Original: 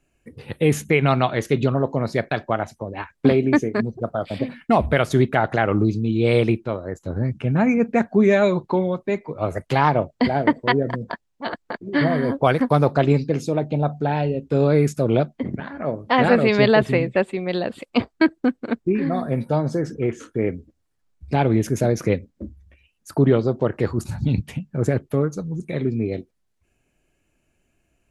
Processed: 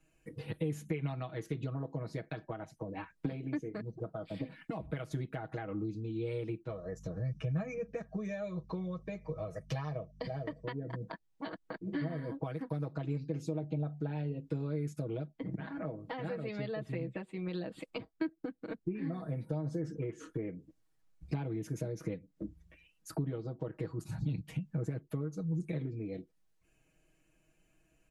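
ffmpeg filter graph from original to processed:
-filter_complex "[0:a]asettb=1/sr,asplit=3[a][b][c];[a]atrim=end=6.694[d];[b]atrim=start=6.69:end=10.65,asetpts=PTS-STARTPTS,afade=t=in:d=0.004:c=qsin,afade=t=out:st=3.956:d=0.004:c=qsin,equalizer=f=5.7k:t=o:w=0.32:g=13.5,aecho=1:1:1.7:0.6,atrim=end_sample=174636,aeval=exprs='val(0)+0.00708*(sin(2*PI*50*n/s)+sin(2*PI*2*50*n/s)/2+sin(2*PI*3*50*n/s)/3+sin(2*PI*4*50*n/s)/4+sin(2*PI*5*50*n/s)/5)':c=same[e];[c]atrim=start=10.646[f];[d][e]acrossfade=d=0.004:c1=hsin:c2=qsin[g];[g][f]acrossfade=d=0.004:c1=qsin:c2=hsin,acompressor=threshold=-30dB:ratio=6,aecho=1:1:6.3:0.96,acrossover=split=410[h][i];[i]acompressor=threshold=-48dB:ratio=1.5[j];[h][j]amix=inputs=2:normalize=0,volume=-6dB"

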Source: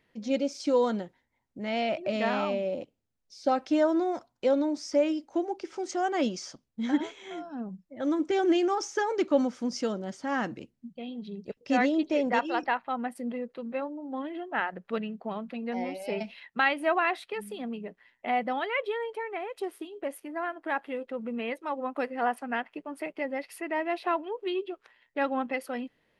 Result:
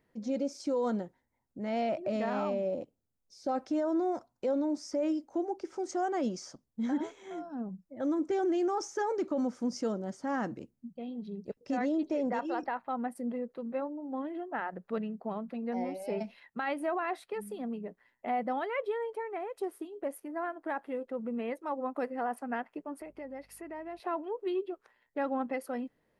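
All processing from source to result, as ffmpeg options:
-filter_complex "[0:a]asettb=1/sr,asplit=3[a][b][c];[a]atrim=end=23.014[d];[b]atrim=start=23.01:end=24,asetpts=PTS-STARTPTS,afade=t=in:d=0.004:c=qsin,afade=t=out:st=0.986:d=0.004:c=qsin,acompressor=threshold=-43dB:ratio=2:attack=3.2:release=140:knee=1:detection=peak,aeval=exprs='val(0)+0.000501*(sin(2*PI*50*n/s)+sin(2*PI*2*50*n/s)/2+sin(2*PI*3*50*n/s)/3+sin(2*PI*4*50*n/s)/4+sin(2*PI*5*50*n/s)/5)':c=same[e];[c]atrim=start=23.996[f];[d][e]acrossfade=d=0.004:c1=hsin:c2=qsin[g];[g][f]acrossfade=d=0.004:c1=qsin:c2=hsin,equalizer=f=3k:w=0.88:g=-11,alimiter=limit=-23dB:level=0:latency=1:release=23,volume=-1dB"

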